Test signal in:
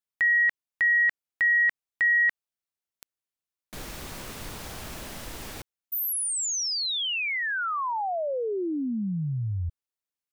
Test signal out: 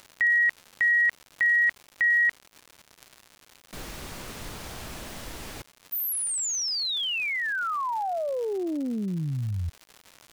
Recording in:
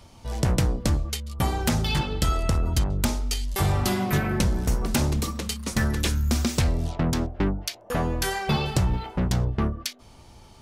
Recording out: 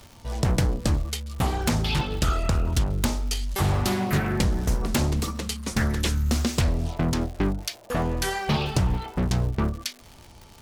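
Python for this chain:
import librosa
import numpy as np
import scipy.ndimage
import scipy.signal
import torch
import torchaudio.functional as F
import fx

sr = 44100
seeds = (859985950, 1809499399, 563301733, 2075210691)

y = fx.dmg_crackle(x, sr, seeds[0], per_s=220.0, level_db=-35.0)
y = fx.doppler_dist(y, sr, depth_ms=0.34)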